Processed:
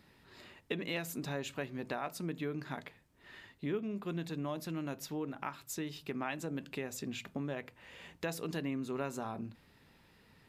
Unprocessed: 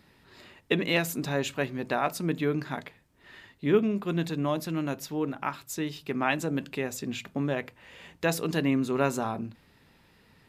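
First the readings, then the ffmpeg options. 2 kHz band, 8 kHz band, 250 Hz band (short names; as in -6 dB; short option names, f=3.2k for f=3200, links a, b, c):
-10.5 dB, -7.5 dB, -10.0 dB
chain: -af "acompressor=threshold=-34dB:ratio=2.5,volume=-3.5dB"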